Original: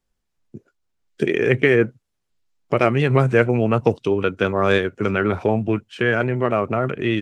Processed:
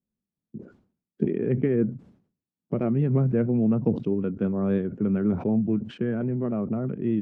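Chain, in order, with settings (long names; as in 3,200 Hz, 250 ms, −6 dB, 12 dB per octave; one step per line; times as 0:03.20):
resonant band-pass 200 Hz, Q 2.3
level that may fall only so fast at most 120 dB per second
level +2.5 dB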